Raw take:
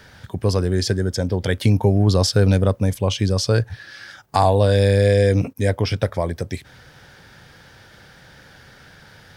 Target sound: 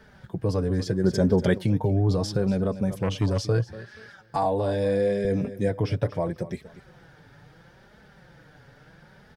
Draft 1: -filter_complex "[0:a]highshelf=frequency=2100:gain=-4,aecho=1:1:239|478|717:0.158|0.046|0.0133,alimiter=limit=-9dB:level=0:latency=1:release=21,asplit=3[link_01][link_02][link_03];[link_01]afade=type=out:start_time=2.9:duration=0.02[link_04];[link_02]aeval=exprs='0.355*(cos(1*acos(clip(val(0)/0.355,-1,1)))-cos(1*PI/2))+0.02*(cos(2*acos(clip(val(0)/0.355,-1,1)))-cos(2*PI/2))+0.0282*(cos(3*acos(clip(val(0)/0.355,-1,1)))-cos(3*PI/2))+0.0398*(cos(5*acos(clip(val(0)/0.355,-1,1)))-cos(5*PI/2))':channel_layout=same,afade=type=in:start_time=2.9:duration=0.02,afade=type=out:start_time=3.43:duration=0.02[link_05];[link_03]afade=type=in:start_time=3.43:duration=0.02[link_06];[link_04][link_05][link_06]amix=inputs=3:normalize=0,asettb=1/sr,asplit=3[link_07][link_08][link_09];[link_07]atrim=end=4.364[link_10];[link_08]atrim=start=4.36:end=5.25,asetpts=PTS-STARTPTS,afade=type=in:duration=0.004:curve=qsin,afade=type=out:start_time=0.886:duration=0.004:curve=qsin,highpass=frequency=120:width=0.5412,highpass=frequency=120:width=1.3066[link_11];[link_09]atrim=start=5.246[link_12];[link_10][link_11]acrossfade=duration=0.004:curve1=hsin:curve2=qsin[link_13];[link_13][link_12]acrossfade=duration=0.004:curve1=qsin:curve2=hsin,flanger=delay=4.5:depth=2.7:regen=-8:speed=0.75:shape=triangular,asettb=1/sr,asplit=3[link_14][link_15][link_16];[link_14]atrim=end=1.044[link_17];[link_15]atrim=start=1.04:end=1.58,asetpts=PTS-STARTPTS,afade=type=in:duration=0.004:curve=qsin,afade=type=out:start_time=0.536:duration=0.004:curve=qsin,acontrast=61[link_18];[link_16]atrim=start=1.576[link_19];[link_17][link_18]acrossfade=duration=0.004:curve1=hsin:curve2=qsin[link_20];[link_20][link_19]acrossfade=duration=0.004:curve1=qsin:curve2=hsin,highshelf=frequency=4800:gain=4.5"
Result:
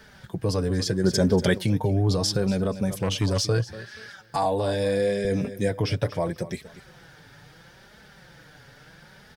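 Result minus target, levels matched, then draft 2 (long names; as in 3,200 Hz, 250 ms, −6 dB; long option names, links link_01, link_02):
4,000 Hz band +8.0 dB
-filter_complex "[0:a]highshelf=frequency=2100:gain=-15,aecho=1:1:239|478|717:0.158|0.046|0.0133,alimiter=limit=-9dB:level=0:latency=1:release=21,asplit=3[link_01][link_02][link_03];[link_01]afade=type=out:start_time=2.9:duration=0.02[link_04];[link_02]aeval=exprs='0.355*(cos(1*acos(clip(val(0)/0.355,-1,1)))-cos(1*PI/2))+0.02*(cos(2*acos(clip(val(0)/0.355,-1,1)))-cos(2*PI/2))+0.0282*(cos(3*acos(clip(val(0)/0.355,-1,1)))-cos(3*PI/2))+0.0398*(cos(5*acos(clip(val(0)/0.355,-1,1)))-cos(5*PI/2))':channel_layout=same,afade=type=in:start_time=2.9:duration=0.02,afade=type=out:start_time=3.43:duration=0.02[link_05];[link_03]afade=type=in:start_time=3.43:duration=0.02[link_06];[link_04][link_05][link_06]amix=inputs=3:normalize=0,asettb=1/sr,asplit=3[link_07][link_08][link_09];[link_07]atrim=end=4.364[link_10];[link_08]atrim=start=4.36:end=5.25,asetpts=PTS-STARTPTS,afade=type=in:duration=0.004:curve=qsin,afade=type=out:start_time=0.886:duration=0.004:curve=qsin,highpass=frequency=120:width=0.5412,highpass=frequency=120:width=1.3066[link_11];[link_09]atrim=start=5.246[link_12];[link_10][link_11]acrossfade=duration=0.004:curve1=hsin:curve2=qsin[link_13];[link_13][link_12]acrossfade=duration=0.004:curve1=qsin:curve2=hsin,flanger=delay=4.5:depth=2.7:regen=-8:speed=0.75:shape=triangular,asettb=1/sr,asplit=3[link_14][link_15][link_16];[link_14]atrim=end=1.044[link_17];[link_15]atrim=start=1.04:end=1.58,asetpts=PTS-STARTPTS,afade=type=in:duration=0.004:curve=qsin,afade=type=out:start_time=0.536:duration=0.004:curve=qsin,acontrast=61[link_18];[link_16]atrim=start=1.576[link_19];[link_17][link_18]acrossfade=duration=0.004:curve1=hsin:curve2=qsin[link_20];[link_20][link_19]acrossfade=duration=0.004:curve1=qsin:curve2=hsin,highshelf=frequency=4800:gain=4.5"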